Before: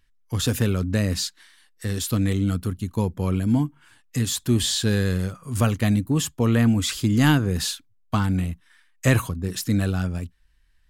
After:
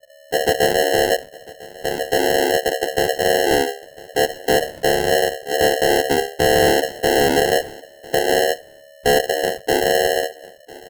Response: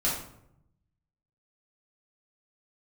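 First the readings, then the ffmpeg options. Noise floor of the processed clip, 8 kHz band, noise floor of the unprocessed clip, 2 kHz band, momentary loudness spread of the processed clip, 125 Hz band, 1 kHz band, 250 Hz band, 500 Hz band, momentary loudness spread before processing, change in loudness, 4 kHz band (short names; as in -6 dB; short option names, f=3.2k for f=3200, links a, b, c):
-46 dBFS, +3.5 dB, -61 dBFS, +10.5 dB, 9 LU, -12.5 dB, +14.0 dB, -3.5 dB, +15.0 dB, 10 LU, +5.0 dB, +7.0 dB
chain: -filter_complex "[0:a]lowpass=f=3k:p=1,aemphasis=mode=reproduction:type=bsi,bandreject=f=50:t=h:w=6,bandreject=f=100:t=h:w=6,bandreject=f=150:t=h:w=6,adynamicequalizer=threshold=0.0794:dfrequency=130:dqfactor=1.3:tfrequency=130:tqfactor=1.3:attack=5:release=100:ratio=0.375:range=2:mode=boostabove:tftype=bell,aeval=exprs='val(0)*sin(2*PI*560*n/s)':c=same,aresample=8000,asoftclip=type=hard:threshold=-11dB,aresample=44100,acrusher=samples=37:mix=1:aa=0.000001,asplit=2[a][b];[b]aecho=0:1:1000|2000:0.0891|0.0152[c];[a][c]amix=inputs=2:normalize=0"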